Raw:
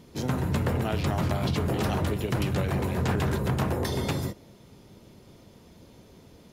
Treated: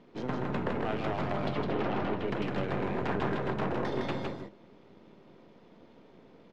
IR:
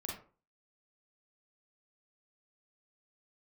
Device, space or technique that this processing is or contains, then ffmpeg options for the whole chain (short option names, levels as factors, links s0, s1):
crystal radio: -filter_complex "[0:a]highpass=220,lowpass=3200,aeval=exprs='if(lt(val(0),0),0.447*val(0),val(0))':c=same,asettb=1/sr,asplit=3[s0][s1][s2];[s0]atrim=end=1.544[s3];[s1]atrim=start=1.54:end=2.26,asetpts=PTS-STARTPTS,afade=t=in:d=0.004:c=qsin,afade=t=out:st=0.716:d=0.004:c=qsin,lowpass=5000[s4];[s2]atrim=start=2.256[s5];[s3][s4]acrossfade=d=0.004:c1=hsin:c2=qsin[s6];[s6][s5]acrossfade=d=0.004:c1=qsin:c2=hsin,lowpass=f=3300:p=1,aecho=1:1:159:0.668"